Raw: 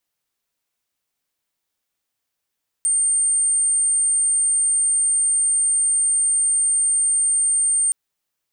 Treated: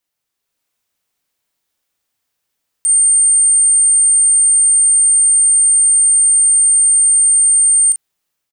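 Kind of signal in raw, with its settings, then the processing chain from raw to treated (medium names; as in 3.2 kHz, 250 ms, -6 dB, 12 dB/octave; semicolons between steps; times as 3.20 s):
tone sine 8.75 kHz -15.5 dBFS 5.07 s
doubling 39 ms -6.5 dB; level rider gain up to 5 dB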